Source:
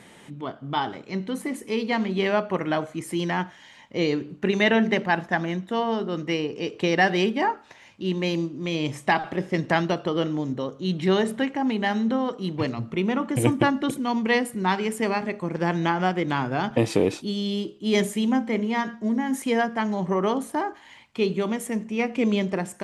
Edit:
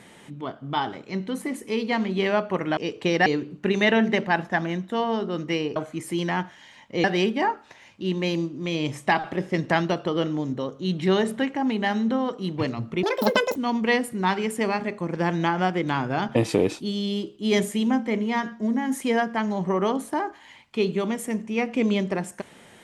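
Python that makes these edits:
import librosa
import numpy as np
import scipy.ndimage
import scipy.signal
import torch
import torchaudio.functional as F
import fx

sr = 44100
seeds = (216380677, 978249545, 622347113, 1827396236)

y = fx.edit(x, sr, fx.swap(start_s=2.77, length_s=1.28, other_s=6.55, other_length_s=0.49),
    fx.speed_span(start_s=13.03, length_s=0.94, speed=1.79), tone=tone)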